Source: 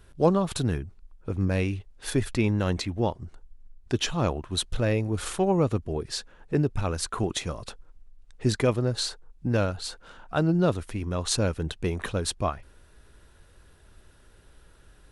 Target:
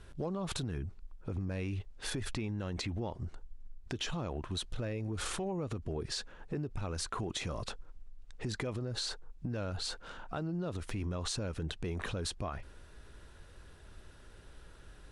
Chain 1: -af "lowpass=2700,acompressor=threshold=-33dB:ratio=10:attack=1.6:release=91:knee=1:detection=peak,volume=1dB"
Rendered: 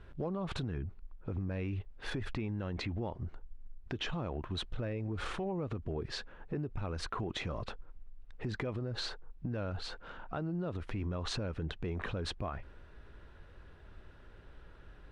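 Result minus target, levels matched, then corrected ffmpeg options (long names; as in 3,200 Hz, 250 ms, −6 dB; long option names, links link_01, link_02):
8,000 Hz band −10.0 dB
-af "lowpass=8600,acompressor=threshold=-33dB:ratio=10:attack=1.6:release=91:knee=1:detection=peak,volume=1dB"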